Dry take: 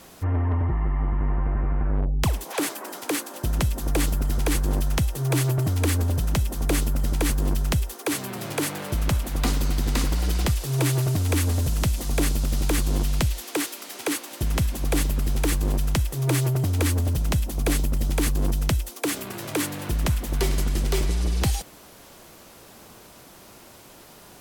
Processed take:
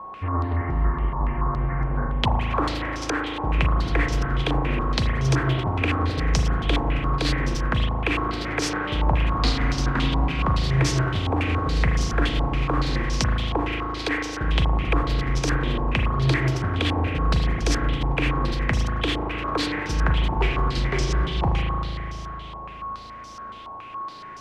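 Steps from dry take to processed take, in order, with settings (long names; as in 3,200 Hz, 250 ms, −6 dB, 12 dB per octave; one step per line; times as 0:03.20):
spring reverb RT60 3.3 s, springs 37 ms, chirp 65 ms, DRR 0 dB
steady tone 1,100 Hz −38 dBFS
low-pass on a step sequencer 7.1 Hz 910–5,600 Hz
level −2 dB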